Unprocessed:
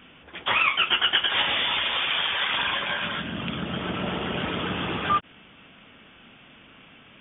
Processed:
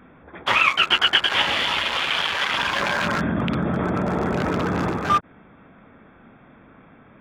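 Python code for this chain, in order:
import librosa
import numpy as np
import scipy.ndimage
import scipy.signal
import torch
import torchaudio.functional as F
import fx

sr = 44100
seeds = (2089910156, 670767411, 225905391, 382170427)

y = fx.wiener(x, sr, points=15)
y = fx.env_flatten(y, sr, amount_pct=100, at=(2.76, 4.9))
y = y * librosa.db_to_amplitude(5.0)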